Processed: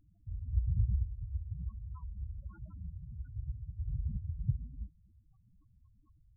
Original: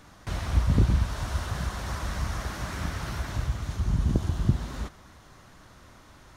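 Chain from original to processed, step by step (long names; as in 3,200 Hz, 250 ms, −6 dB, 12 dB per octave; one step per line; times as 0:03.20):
0:01.88–0:04.48: low-shelf EQ 210 Hz −2.5 dB
spectral peaks only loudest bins 4
level −7.5 dB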